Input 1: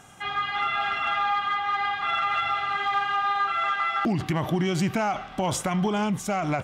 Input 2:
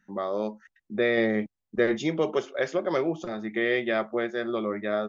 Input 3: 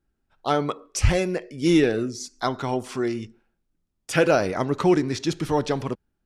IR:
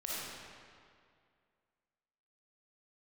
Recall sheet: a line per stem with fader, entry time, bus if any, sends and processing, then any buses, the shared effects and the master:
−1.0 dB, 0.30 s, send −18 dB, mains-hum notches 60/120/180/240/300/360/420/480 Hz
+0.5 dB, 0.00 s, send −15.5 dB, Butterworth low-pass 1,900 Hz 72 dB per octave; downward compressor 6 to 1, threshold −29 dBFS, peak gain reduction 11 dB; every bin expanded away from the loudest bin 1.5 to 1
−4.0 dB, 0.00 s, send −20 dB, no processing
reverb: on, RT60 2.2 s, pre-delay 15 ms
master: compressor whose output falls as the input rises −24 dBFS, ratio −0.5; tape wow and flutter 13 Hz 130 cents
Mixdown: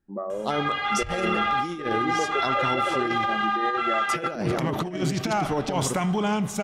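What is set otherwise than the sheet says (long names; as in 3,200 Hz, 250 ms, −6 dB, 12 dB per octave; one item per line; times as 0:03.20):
stem 1: missing mains-hum notches 60/120/180/240/300/360/420/480 Hz
master: missing tape wow and flutter 13 Hz 130 cents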